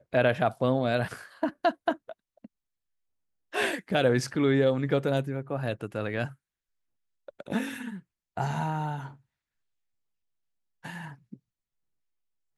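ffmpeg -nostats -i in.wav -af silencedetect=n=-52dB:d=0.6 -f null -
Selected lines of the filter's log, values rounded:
silence_start: 2.46
silence_end: 3.53 | silence_duration: 1.06
silence_start: 6.35
silence_end: 7.28 | silence_duration: 0.94
silence_start: 9.16
silence_end: 10.83 | silence_duration: 1.67
silence_start: 11.36
silence_end: 12.58 | silence_duration: 1.21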